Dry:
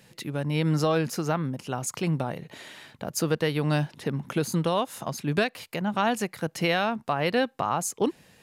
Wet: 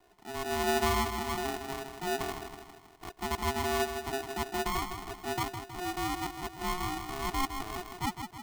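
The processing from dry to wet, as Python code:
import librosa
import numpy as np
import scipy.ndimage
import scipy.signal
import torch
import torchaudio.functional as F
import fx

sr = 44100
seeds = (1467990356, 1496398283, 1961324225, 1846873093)

p1 = scipy.signal.sosfilt(scipy.signal.butter(16, 640.0, 'lowpass', fs=sr, output='sos'), x)
p2 = fx.transient(p1, sr, attack_db=-7, sustain_db=-3)
p3 = p2 + fx.echo_feedback(p2, sr, ms=159, feedback_pct=52, wet_db=-7.5, dry=0)
p4 = p3 * np.sign(np.sin(2.0 * np.pi * 540.0 * np.arange(len(p3)) / sr))
y = F.gain(torch.from_numpy(p4), -4.5).numpy()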